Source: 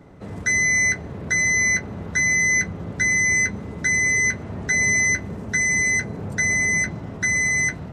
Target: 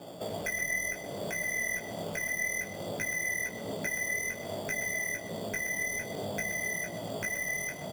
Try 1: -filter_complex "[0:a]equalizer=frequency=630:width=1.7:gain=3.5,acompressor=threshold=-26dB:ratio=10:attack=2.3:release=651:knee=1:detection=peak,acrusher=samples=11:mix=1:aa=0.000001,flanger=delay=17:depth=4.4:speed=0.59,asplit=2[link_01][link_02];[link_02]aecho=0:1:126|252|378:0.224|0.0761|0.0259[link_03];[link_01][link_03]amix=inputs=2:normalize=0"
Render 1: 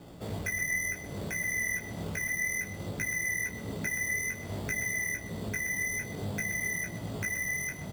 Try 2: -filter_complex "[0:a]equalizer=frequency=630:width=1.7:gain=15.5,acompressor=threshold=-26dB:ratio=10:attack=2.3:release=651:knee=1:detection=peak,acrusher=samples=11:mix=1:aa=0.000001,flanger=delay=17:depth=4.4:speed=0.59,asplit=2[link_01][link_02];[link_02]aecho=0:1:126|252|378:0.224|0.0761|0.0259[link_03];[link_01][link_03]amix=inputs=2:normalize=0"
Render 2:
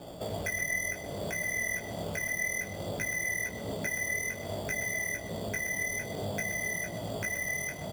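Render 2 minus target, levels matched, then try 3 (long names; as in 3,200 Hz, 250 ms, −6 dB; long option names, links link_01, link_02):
125 Hz band +4.0 dB
-filter_complex "[0:a]equalizer=frequency=630:width=1.7:gain=15.5,acompressor=threshold=-26dB:ratio=10:attack=2.3:release=651:knee=1:detection=peak,highpass=140,acrusher=samples=11:mix=1:aa=0.000001,flanger=delay=17:depth=4.4:speed=0.59,asplit=2[link_01][link_02];[link_02]aecho=0:1:126|252|378:0.224|0.0761|0.0259[link_03];[link_01][link_03]amix=inputs=2:normalize=0"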